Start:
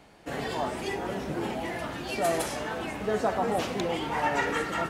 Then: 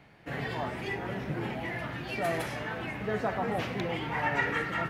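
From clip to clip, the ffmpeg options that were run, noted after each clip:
-af "equalizer=f=125:t=o:w=1:g=11,equalizer=f=2000:t=o:w=1:g=8,equalizer=f=8000:t=o:w=1:g=-9,volume=0.531"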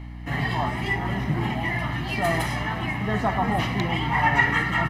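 -af "aecho=1:1:1:0.68,aeval=exprs='val(0)+0.00794*(sin(2*PI*60*n/s)+sin(2*PI*2*60*n/s)/2+sin(2*PI*3*60*n/s)/3+sin(2*PI*4*60*n/s)/4+sin(2*PI*5*60*n/s)/5)':c=same,volume=2.11"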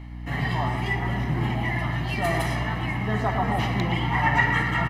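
-filter_complex "[0:a]asplit=2[s0][s1];[s1]adelay=117,lowpass=f=2000:p=1,volume=0.473,asplit=2[s2][s3];[s3]adelay=117,lowpass=f=2000:p=1,volume=0.53,asplit=2[s4][s5];[s5]adelay=117,lowpass=f=2000:p=1,volume=0.53,asplit=2[s6][s7];[s7]adelay=117,lowpass=f=2000:p=1,volume=0.53,asplit=2[s8][s9];[s9]adelay=117,lowpass=f=2000:p=1,volume=0.53,asplit=2[s10][s11];[s11]adelay=117,lowpass=f=2000:p=1,volume=0.53,asplit=2[s12][s13];[s13]adelay=117,lowpass=f=2000:p=1,volume=0.53[s14];[s0][s2][s4][s6][s8][s10][s12][s14]amix=inputs=8:normalize=0,volume=0.794"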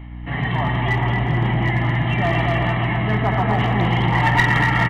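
-af "aresample=8000,aresample=44100,aecho=1:1:240|432|585.6|708.5|806.8:0.631|0.398|0.251|0.158|0.1,aeval=exprs='clip(val(0),-1,0.158)':c=same,volume=1.5"

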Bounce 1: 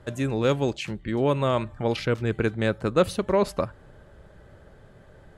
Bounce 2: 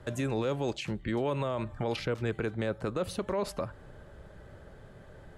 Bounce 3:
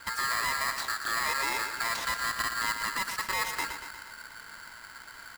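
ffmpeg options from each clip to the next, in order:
-filter_complex "[0:a]acrossover=split=490|990[s0][s1][s2];[s0]acompressor=threshold=0.0316:ratio=4[s3];[s1]acompressor=threshold=0.0447:ratio=4[s4];[s2]acompressor=threshold=0.0141:ratio=4[s5];[s3][s4][s5]amix=inputs=3:normalize=0,alimiter=limit=0.0794:level=0:latency=1:release=20"
-af "aeval=exprs='0.0841*sin(PI/2*1.41*val(0)/0.0841)':c=same,aecho=1:1:118|236|354|472|590|708|826:0.398|0.219|0.12|0.0662|0.0364|0.02|0.011,aeval=exprs='val(0)*sgn(sin(2*PI*1500*n/s))':c=same,volume=0.596"

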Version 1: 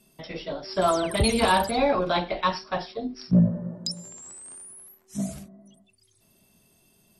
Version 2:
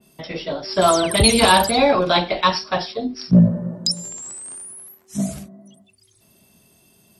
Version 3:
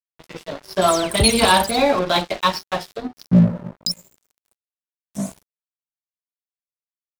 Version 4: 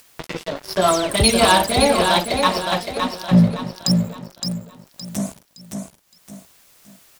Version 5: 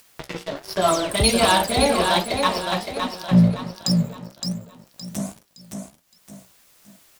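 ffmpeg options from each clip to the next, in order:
-af "highpass=48,adynamicequalizer=threshold=0.01:dfrequency=2700:dqfactor=0.7:tfrequency=2700:tqfactor=0.7:attack=5:release=100:ratio=0.375:range=3:mode=boostabove:tftype=highshelf,volume=2.11"
-af "aeval=exprs='sgn(val(0))*max(abs(val(0))-0.0355,0)':c=same"
-filter_complex "[0:a]acompressor=mode=upward:threshold=0.112:ratio=2.5,asplit=2[s0][s1];[s1]aecho=0:1:566|1132|1698|2264:0.531|0.186|0.065|0.0228[s2];[s0][s2]amix=inputs=2:normalize=0"
-af "flanger=delay=9.3:depth=7.8:regen=69:speed=1.3:shape=sinusoidal,volume=1.19"

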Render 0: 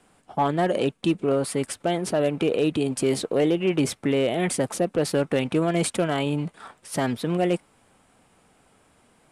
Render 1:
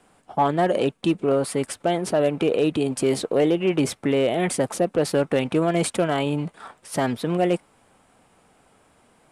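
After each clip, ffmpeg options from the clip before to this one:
-af "equalizer=f=750:w=0.63:g=3"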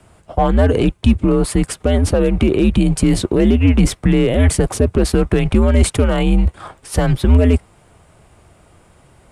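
-af "alimiter=limit=0.2:level=0:latency=1,equalizer=f=170:t=o:w=1.1:g=11,afreqshift=-100,volume=2.11"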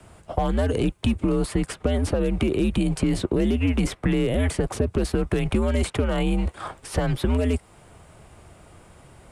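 -filter_complex "[0:a]acrossover=split=260|3300|7300[s0][s1][s2][s3];[s0]acompressor=threshold=0.0631:ratio=4[s4];[s1]acompressor=threshold=0.0562:ratio=4[s5];[s2]acompressor=threshold=0.00631:ratio=4[s6];[s3]acompressor=threshold=0.00631:ratio=4[s7];[s4][s5][s6][s7]amix=inputs=4:normalize=0"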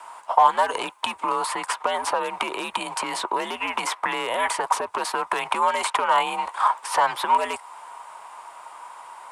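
-af "highpass=f=960:t=q:w=9.1,volume=1.68"

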